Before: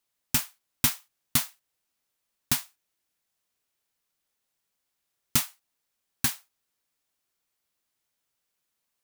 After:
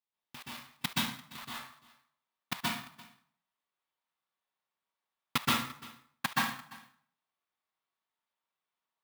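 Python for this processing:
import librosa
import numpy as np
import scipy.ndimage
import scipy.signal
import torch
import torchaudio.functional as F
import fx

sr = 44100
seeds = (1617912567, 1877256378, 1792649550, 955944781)

y = fx.peak_eq(x, sr, hz=1200.0, db=fx.steps((0.0, 7.5), (1.38, 14.0)), octaves=2.2)
y = fx.level_steps(y, sr, step_db=18)
y = fx.cabinet(y, sr, low_hz=120.0, low_slope=12, high_hz=5100.0, hz=(180.0, 1500.0, 3600.0), db=(5, -6, 4))
y = y + 10.0 ** (-20.5 / 20.0) * np.pad(y, (int(343 * sr / 1000.0), 0))[:len(y)]
y = fx.rev_plate(y, sr, seeds[0], rt60_s=0.55, hf_ratio=0.8, predelay_ms=115, drr_db=-6.0)
y = fx.clock_jitter(y, sr, seeds[1], jitter_ms=0.027)
y = F.gain(torch.from_numpy(y), -6.5).numpy()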